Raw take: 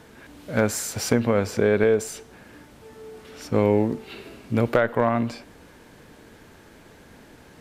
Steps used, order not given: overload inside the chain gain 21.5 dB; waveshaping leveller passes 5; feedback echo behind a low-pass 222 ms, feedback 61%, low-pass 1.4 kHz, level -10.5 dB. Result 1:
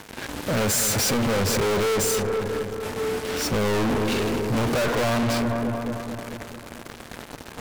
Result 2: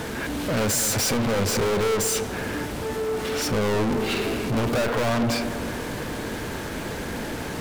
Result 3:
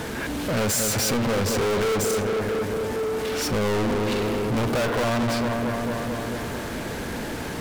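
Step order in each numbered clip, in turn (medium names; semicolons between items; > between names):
waveshaping leveller > feedback echo behind a low-pass > overload inside the chain; overload inside the chain > waveshaping leveller > feedback echo behind a low-pass; feedback echo behind a low-pass > overload inside the chain > waveshaping leveller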